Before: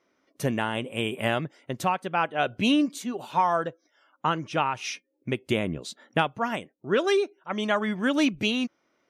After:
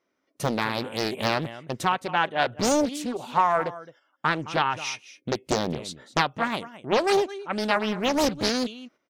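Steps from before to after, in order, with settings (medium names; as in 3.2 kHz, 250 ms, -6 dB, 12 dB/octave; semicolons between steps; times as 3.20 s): delay 215 ms -16.5 dB; gate -55 dBFS, range -8 dB; loudspeaker Doppler distortion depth 0.94 ms; trim +2 dB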